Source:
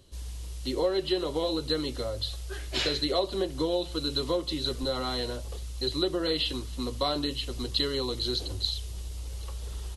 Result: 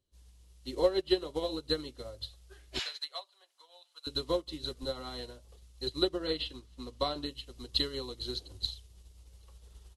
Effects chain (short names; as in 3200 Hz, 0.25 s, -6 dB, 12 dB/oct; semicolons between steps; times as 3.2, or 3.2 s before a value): 2.79–4.07 HPF 800 Hz 24 dB/oct; 6.07–7.26 high shelf 9700 Hz -9 dB; upward expander 2.5:1, over -41 dBFS; gain +2.5 dB